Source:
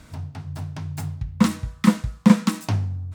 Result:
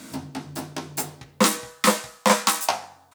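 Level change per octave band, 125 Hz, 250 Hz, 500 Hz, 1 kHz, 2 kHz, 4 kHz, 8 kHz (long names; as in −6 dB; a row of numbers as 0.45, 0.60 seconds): −13.0, −9.0, +8.0, +8.5, +7.0, +9.0, +12.5 decibels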